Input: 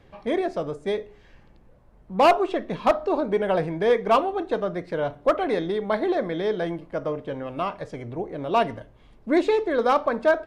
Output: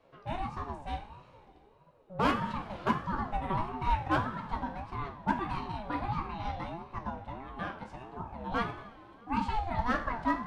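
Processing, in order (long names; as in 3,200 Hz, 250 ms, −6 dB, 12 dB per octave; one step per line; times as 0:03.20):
coupled-rooms reverb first 0.43 s, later 2.9 s, from −15 dB, DRR 3 dB
flanger 0.41 Hz, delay 8.1 ms, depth 8.5 ms, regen +63%
ring modulator whose carrier an LFO sweeps 460 Hz, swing 25%, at 1.6 Hz
level −4.5 dB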